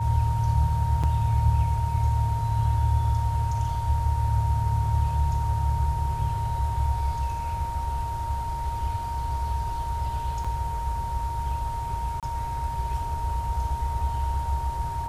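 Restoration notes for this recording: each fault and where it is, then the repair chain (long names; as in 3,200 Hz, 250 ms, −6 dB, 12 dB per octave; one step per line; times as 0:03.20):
whistle 930 Hz −30 dBFS
0:01.03–0:01.04: drop-out 6 ms
0:10.44–0:10.45: drop-out 5.6 ms
0:12.20–0:12.23: drop-out 27 ms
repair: notch filter 930 Hz, Q 30
repair the gap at 0:01.03, 6 ms
repair the gap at 0:10.44, 5.6 ms
repair the gap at 0:12.20, 27 ms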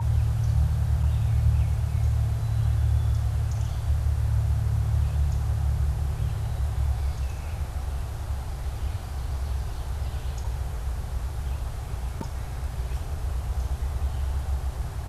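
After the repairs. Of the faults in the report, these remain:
none of them is left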